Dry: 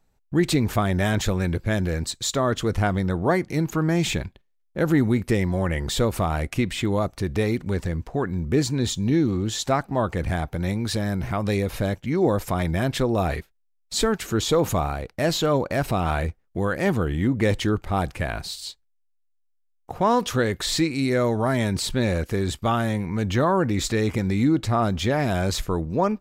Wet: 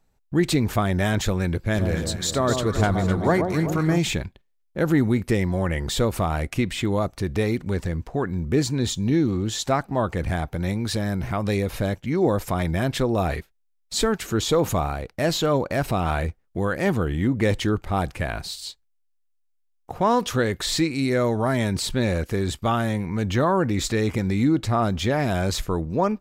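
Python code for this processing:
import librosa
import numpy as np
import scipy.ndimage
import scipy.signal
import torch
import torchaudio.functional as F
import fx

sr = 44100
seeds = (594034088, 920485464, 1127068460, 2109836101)

y = fx.echo_alternate(x, sr, ms=127, hz=1100.0, feedback_pct=71, wet_db=-5, at=(1.74, 3.97), fade=0.02)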